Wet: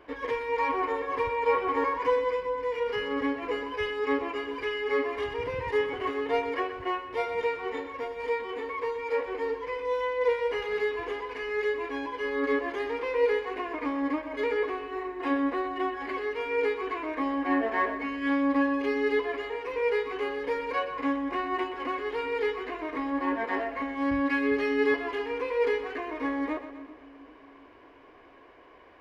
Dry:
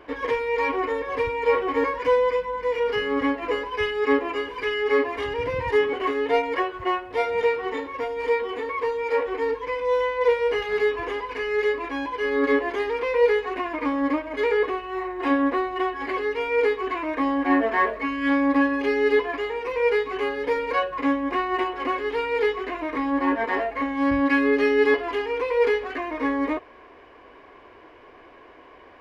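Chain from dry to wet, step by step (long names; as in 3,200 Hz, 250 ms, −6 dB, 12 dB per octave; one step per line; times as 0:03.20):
0:00.52–0:02.10: parametric band 1,000 Hz +6.5 dB 0.73 octaves
echo with a time of its own for lows and highs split 300 Hz, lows 398 ms, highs 124 ms, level −11.5 dB
level −6 dB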